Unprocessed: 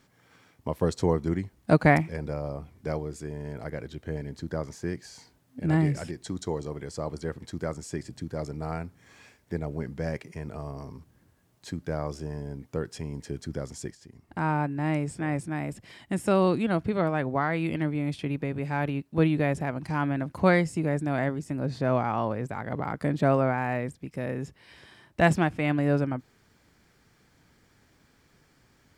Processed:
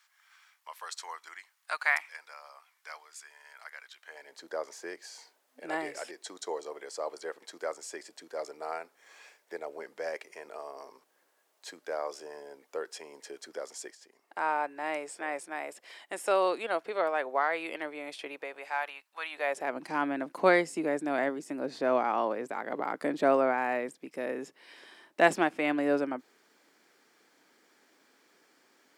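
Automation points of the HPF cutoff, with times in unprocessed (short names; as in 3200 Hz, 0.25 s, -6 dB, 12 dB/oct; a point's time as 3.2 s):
HPF 24 dB/oct
3.95 s 1100 Hz
4.46 s 460 Hz
18.29 s 460 Hz
19.2 s 1000 Hz
19.76 s 290 Hz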